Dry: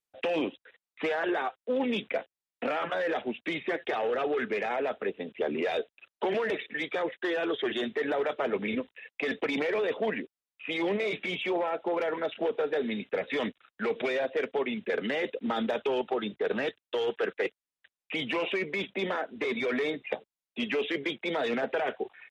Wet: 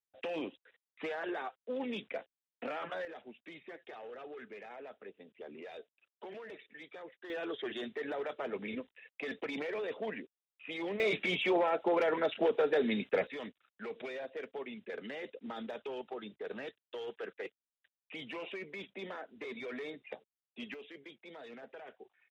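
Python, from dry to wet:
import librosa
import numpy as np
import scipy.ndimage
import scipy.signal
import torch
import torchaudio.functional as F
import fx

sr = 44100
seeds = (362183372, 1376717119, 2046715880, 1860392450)

y = fx.gain(x, sr, db=fx.steps((0.0, -9.0), (3.05, -18.0), (7.3, -9.0), (11.0, 0.0), (13.27, -12.5), (20.74, -20.0)))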